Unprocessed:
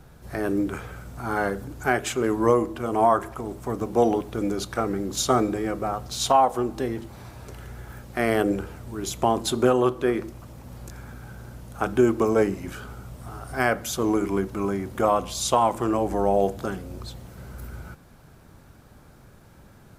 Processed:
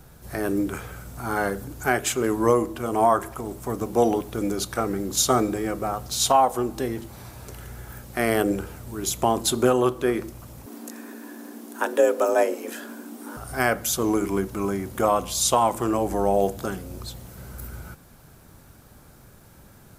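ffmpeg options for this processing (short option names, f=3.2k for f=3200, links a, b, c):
-filter_complex "[0:a]asettb=1/sr,asplit=3[a][b][c];[a]atrim=end=10.664[d];[b]atrim=start=10.66:end=13.37,asetpts=PTS-STARTPTS,afade=t=in:d=0.004:c=qsin,afade=t=out:st=2.706:d=0.004:c=qsin,afreqshift=170[e];[c]atrim=start=13.366[f];[d][e]acrossfade=d=0.004:c1=hsin:c2=qsin[g];[g][f]acrossfade=d=0.004:c1=qsin:c2=hsin,highshelf=f=6.7k:g=11"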